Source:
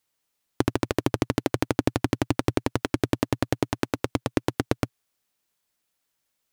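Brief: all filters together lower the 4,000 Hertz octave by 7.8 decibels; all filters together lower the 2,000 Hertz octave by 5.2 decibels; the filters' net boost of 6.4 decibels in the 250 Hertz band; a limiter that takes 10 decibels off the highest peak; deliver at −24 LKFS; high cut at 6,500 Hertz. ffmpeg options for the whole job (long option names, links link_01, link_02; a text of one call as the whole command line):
ffmpeg -i in.wav -af "lowpass=6500,equalizer=frequency=250:width_type=o:gain=8,equalizer=frequency=2000:width_type=o:gain=-5,equalizer=frequency=4000:width_type=o:gain=-8,volume=6dB,alimiter=limit=-6.5dB:level=0:latency=1" out.wav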